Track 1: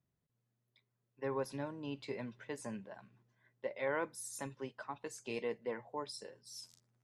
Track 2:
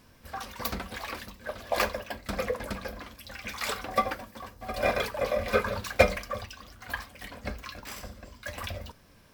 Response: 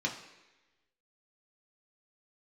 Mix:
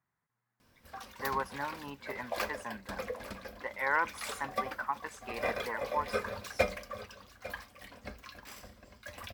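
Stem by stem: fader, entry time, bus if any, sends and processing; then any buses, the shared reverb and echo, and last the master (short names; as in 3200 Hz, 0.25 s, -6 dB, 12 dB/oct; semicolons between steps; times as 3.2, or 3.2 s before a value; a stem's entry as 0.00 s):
-3.0 dB, 0.00 s, no send, no echo send, band shelf 1300 Hz +14.5 dB
-8.0 dB, 0.60 s, no send, echo send -16 dB, dry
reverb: off
echo: echo 0.85 s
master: low shelf 99 Hz -5.5 dB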